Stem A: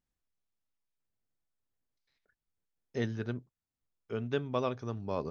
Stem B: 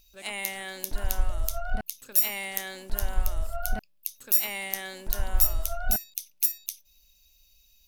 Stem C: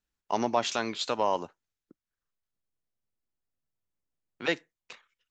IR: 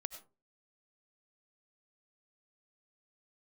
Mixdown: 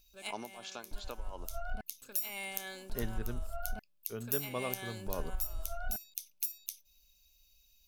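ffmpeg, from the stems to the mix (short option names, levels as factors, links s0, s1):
-filter_complex "[0:a]volume=0.501[s0];[1:a]volume=0.531[s1];[2:a]tremolo=f=2.8:d=0.9,volume=0.237,asplit=2[s2][s3];[s3]apad=whole_len=347365[s4];[s1][s4]sidechaincompress=threshold=0.00158:ratio=12:attack=16:release=148[s5];[s5][s2]amix=inputs=2:normalize=0,asuperstop=centerf=1900:order=20:qfactor=7.7,acompressor=threshold=0.0251:ratio=4,volume=1[s6];[s0][s6]amix=inputs=2:normalize=0"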